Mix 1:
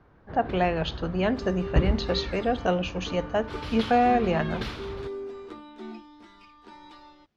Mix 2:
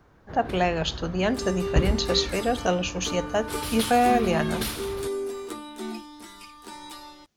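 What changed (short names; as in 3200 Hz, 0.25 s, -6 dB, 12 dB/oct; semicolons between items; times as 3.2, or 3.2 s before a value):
second sound +5.0 dB; master: remove air absorption 210 m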